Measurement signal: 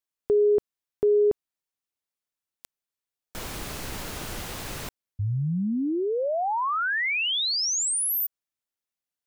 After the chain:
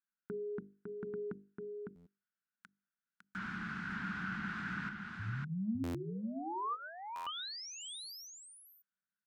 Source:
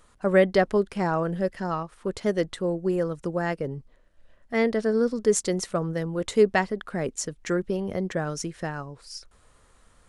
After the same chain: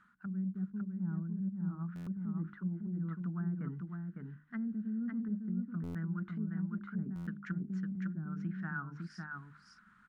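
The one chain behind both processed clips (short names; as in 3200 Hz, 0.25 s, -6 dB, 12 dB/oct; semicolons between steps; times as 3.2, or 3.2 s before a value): double band-pass 540 Hz, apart 2.9 oct; treble ducked by the level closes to 300 Hz, closed at -33.5 dBFS; notch 530 Hz, Q 13; reverse; compressor 6:1, threshold -43 dBFS; reverse; notches 50/100/150/200/250/300/350/400/450 Hz; echo 0.555 s -4 dB; stuck buffer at 1.95/5.83/7.15, samples 512, times 9; gain +8 dB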